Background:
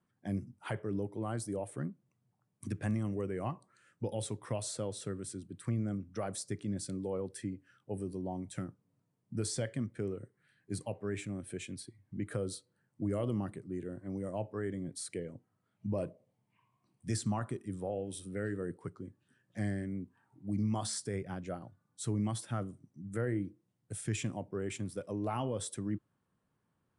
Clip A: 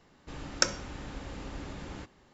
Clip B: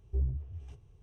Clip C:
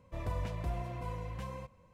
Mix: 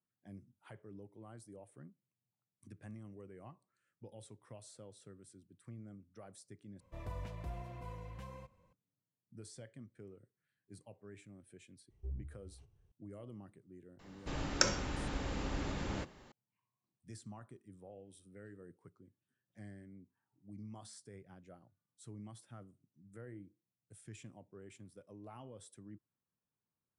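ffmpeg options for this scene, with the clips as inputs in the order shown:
-filter_complex "[0:a]volume=-16.5dB[a];[1:a]alimiter=level_in=9.5dB:limit=-1dB:release=50:level=0:latency=1[b];[a]asplit=2[c][d];[c]atrim=end=6.804[e];[3:a]atrim=end=1.93,asetpts=PTS-STARTPTS,volume=-7.5dB[f];[d]atrim=start=8.726[g];[2:a]atrim=end=1.02,asetpts=PTS-STARTPTS,volume=-12dB,afade=t=in:d=0.004:c=hsin,afade=t=out:st=1.016:d=0.004:c=hsin,adelay=11900[h];[b]atrim=end=2.33,asetpts=PTS-STARTPTS,volume=-7dB,afade=t=in:d=0.004:c=hsin,afade=t=out:st=2.326:d=0.004:c=hsin,adelay=13990[i];[e][f]acrossfade=d=0.004:c1=hsin:c2=hsin[j];[j][g]acrossfade=d=0.004:c1=hsin:c2=hsin[k];[k][h][i]amix=inputs=3:normalize=0"

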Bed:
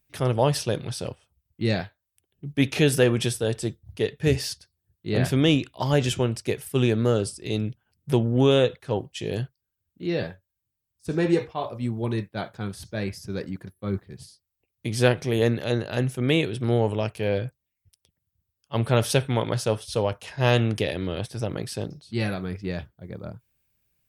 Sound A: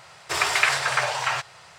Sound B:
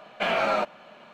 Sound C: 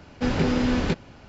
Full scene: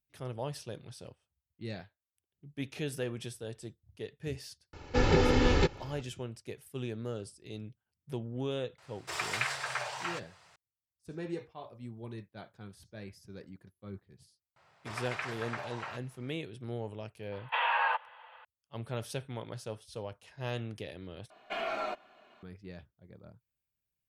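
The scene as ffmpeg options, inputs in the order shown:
-filter_complex "[1:a]asplit=2[a][b];[2:a]asplit=2[c][d];[0:a]volume=-16.5dB[e];[3:a]aecho=1:1:2.3:0.67[f];[b]lowpass=f=1.7k:p=1[g];[c]highpass=f=240:t=q:w=0.5412,highpass=f=240:t=q:w=1.307,lowpass=f=3.1k:t=q:w=0.5176,lowpass=f=3.1k:t=q:w=0.7071,lowpass=f=3.1k:t=q:w=1.932,afreqshift=280[h];[d]aecho=1:1:2.8:0.59[i];[e]asplit=2[j][k];[j]atrim=end=21.304[l];[i]atrim=end=1.13,asetpts=PTS-STARTPTS,volume=-12dB[m];[k]atrim=start=22.426[n];[f]atrim=end=1.28,asetpts=PTS-STARTPTS,volume=-2dB,afade=t=in:d=0.004:c=hsin,afade=t=out:st=1.276:d=0.004:c=hsin,adelay=208593S[o];[a]atrim=end=1.78,asetpts=PTS-STARTPTS,volume=-12.5dB,afade=t=in:d=0.004:c=hsin,afade=t=out:st=1.776:d=0.004:c=hsin,adelay=8780[p];[g]atrim=end=1.78,asetpts=PTS-STARTPTS,volume=-14.5dB,afade=t=in:d=0.004:c=hsin,afade=t=out:st=1.776:d=0.004:c=hsin,adelay=14560[q];[h]atrim=end=1.13,asetpts=PTS-STARTPTS,volume=-4.5dB,afade=t=in:d=0.004:c=hsin,afade=t=out:st=1.126:d=0.004:c=hsin,adelay=763812S[r];[l][m]acrossfade=d=0.004:c1=hsin:c2=hsin[s];[s][n]acrossfade=d=0.004:c1=hsin:c2=hsin[t];[t][o][p][q][r]amix=inputs=5:normalize=0"

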